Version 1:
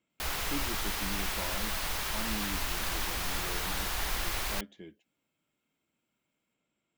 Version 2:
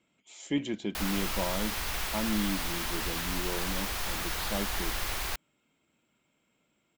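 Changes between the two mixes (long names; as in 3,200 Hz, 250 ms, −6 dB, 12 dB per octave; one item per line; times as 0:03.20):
speech +8.5 dB
background: entry +0.75 s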